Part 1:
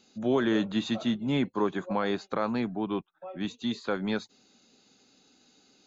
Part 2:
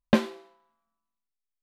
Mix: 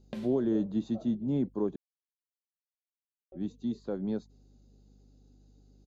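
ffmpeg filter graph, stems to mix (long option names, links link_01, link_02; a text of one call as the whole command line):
ffmpeg -i stem1.wav -i stem2.wav -filter_complex "[0:a]firequalizer=gain_entry='entry(350,0);entry(2300,-22);entry(4900,-13)':delay=0.05:min_phase=1,aeval=exprs='val(0)+0.00141*(sin(2*PI*50*n/s)+sin(2*PI*2*50*n/s)/2+sin(2*PI*3*50*n/s)/3+sin(2*PI*4*50*n/s)/4+sin(2*PI*5*50*n/s)/5)':channel_layout=same,volume=-1.5dB,asplit=3[link_01][link_02][link_03];[link_01]atrim=end=1.76,asetpts=PTS-STARTPTS,afade=type=out:start_time=1.756:duration=0.004:curve=hsin[link_04];[link_02]atrim=start=1.76:end=3.32,asetpts=PTS-STARTPTS,volume=0[link_05];[link_03]atrim=start=3.32,asetpts=PTS-STARTPTS,afade=type=in:duration=0.004:curve=hsin[link_06];[link_04][link_05][link_06]concat=n=3:v=0:a=1,asplit=2[link_07][link_08];[1:a]acompressor=threshold=-24dB:ratio=10,alimiter=limit=-23dB:level=0:latency=1:release=194,volume=-1.5dB[link_09];[link_08]apad=whole_len=71532[link_10];[link_09][link_10]sidechaincompress=threshold=-33dB:ratio=8:attack=11:release=139[link_11];[link_07][link_11]amix=inputs=2:normalize=0,equalizer=frequency=1200:width_type=o:width=1.2:gain=-7.5" out.wav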